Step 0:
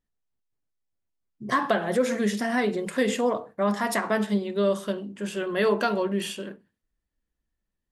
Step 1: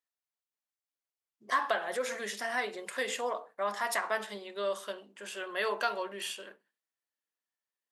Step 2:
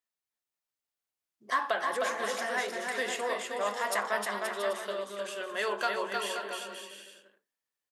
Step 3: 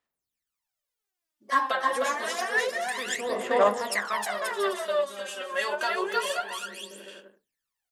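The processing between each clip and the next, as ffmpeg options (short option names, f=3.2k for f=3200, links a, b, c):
-af "highpass=690,volume=-3.5dB"
-af "aecho=1:1:310|527|678.9|785.2|859.7:0.631|0.398|0.251|0.158|0.1"
-af "aphaser=in_gain=1:out_gain=1:delay=3.8:decay=0.77:speed=0.28:type=sinusoidal"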